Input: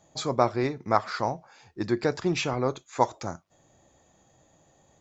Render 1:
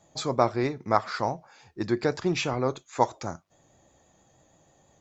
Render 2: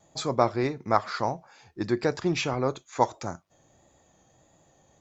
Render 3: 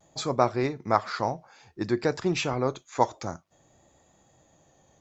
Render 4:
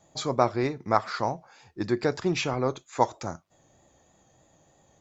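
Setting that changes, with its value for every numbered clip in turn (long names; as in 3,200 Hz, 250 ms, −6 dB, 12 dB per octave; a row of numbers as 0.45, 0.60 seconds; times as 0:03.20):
pitch vibrato, speed: 6.2, 1.6, 0.56, 3.2 Hertz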